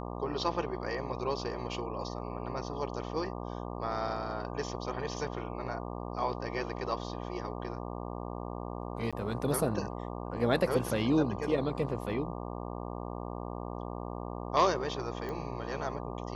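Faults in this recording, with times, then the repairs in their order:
buzz 60 Hz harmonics 20 -39 dBFS
9.11–9.13 s: dropout 16 ms
15.29 s: pop -27 dBFS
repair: de-click; de-hum 60 Hz, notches 20; interpolate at 9.11 s, 16 ms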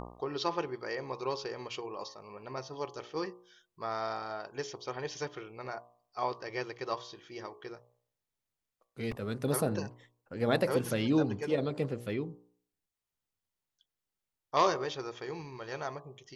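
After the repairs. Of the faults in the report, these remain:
15.29 s: pop

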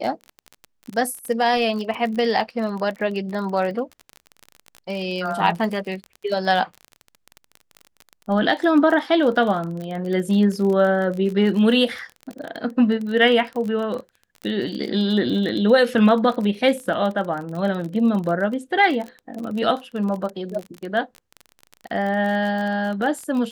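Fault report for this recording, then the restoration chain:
crackle 30 per s -27 dBFS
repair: de-click

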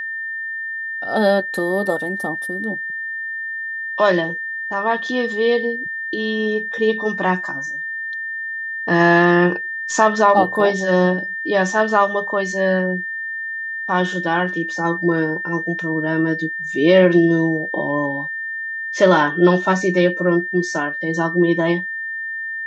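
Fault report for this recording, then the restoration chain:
whine 1.8 kHz -24 dBFS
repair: band-stop 1.8 kHz, Q 30

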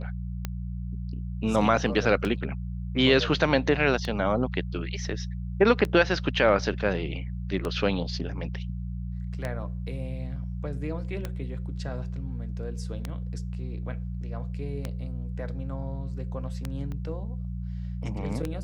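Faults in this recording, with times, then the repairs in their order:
hum 60 Hz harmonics 3 -33 dBFS
tick 33 1/3 rpm -16 dBFS
16.92 s: pop -26 dBFS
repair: de-click; de-hum 60 Hz, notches 3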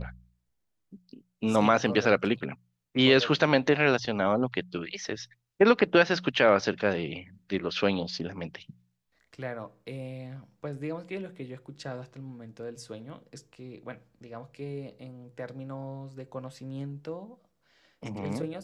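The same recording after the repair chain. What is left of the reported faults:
16.92 s: pop

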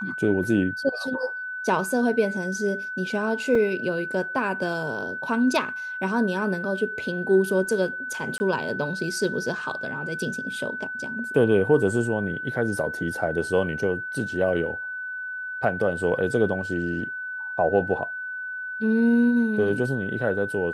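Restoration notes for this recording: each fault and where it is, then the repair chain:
whine 1.5 kHz -30 dBFS
3.55 s: dropout 2.9 ms
8.38–8.40 s: dropout 20 ms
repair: band-stop 1.5 kHz, Q 30; interpolate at 3.55 s, 2.9 ms; interpolate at 8.38 s, 20 ms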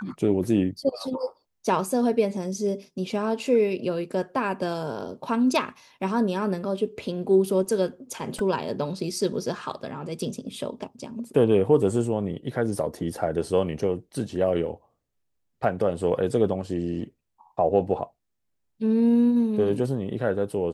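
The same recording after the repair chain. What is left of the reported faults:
nothing left

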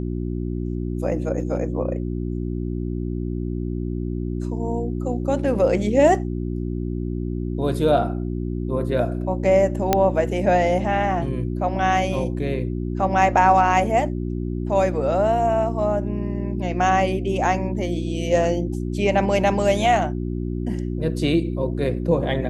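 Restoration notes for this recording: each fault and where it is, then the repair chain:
hum 60 Hz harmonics 6 -26 dBFS
9.93 s: pop -3 dBFS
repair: de-click; de-hum 60 Hz, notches 6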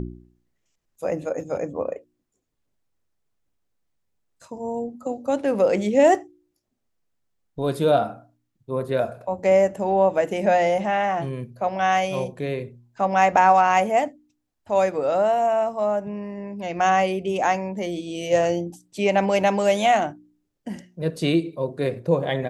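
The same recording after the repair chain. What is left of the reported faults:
nothing left

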